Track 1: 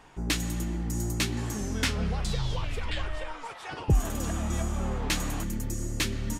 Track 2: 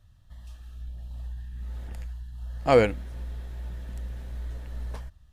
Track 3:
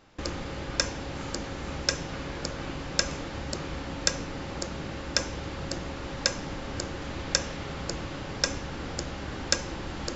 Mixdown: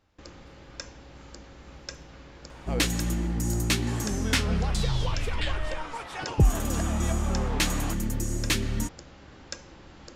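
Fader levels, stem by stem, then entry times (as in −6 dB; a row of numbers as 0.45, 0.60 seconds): +3.0, −16.5, −13.0 decibels; 2.50, 0.00, 0.00 seconds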